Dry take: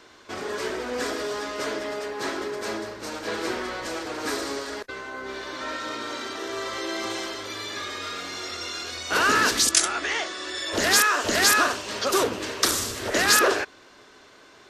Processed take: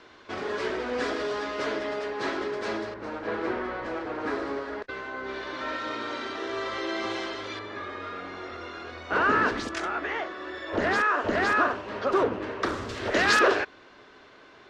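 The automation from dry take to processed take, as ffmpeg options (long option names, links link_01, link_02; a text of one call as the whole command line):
ffmpeg -i in.wav -af "asetnsamples=nb_out_samples=441:pad=0,asendcmd='2.94 lowpass f 1800;4.82 lowpass f 3400;7.59 lowpass f 1600;12.89 lowpass f 3400',lowpass=3800" out.wav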